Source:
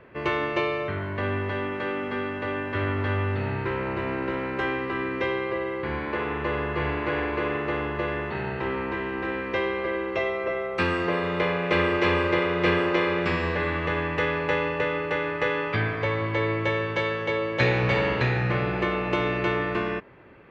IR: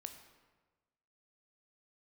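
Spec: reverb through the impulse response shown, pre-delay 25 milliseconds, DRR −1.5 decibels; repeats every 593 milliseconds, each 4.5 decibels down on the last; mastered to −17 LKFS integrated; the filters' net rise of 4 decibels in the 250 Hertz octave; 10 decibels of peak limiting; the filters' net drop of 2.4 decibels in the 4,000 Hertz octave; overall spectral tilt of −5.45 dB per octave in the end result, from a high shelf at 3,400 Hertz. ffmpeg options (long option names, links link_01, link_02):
-filter_complex "[0:a]equalizer=frequency=250:width_type=o:gain=6,highshelf=frequency=3400:gain=7,equalizer=frequency=4000:width_type=o:gain=-8.5,alimiter=limit=-17dB:level=0:latency=1,aecho=1:1:593|1186|1779|2372|2965|3558|4151|4744|5337:0.596|0.357|0.214|0.129|0.0772|0.0463|0.0278|0.0167|0.01,asplit=2[link_01][link_02];[1:a]atrim=start_sample=2205,adelay=25[link_03];[link_02][link_03]afir=irnorm=-1:irlink=0,volume=6dB[link_04];[link_01][link_04]amix=inputs=2:normalize=0,volume=3.5dB"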